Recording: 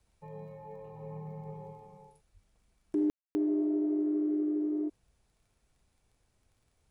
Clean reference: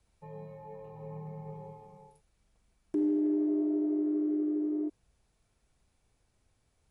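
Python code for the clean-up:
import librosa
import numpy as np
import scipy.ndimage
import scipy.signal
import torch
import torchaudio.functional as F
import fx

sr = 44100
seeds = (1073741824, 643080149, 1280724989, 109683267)

y = fx.fix_declick_ar(x, sr, threshold=6.5)
y = fx.highpass(y, sr, hz=140.0, slope=24, at=(2.33, 2.45), fade=0.02)
y = fx.fix_ambience(y, sr, seeds[0], print_start_s=5.25, print_end_s=5.75, start_s=3.1, end_s=3.35)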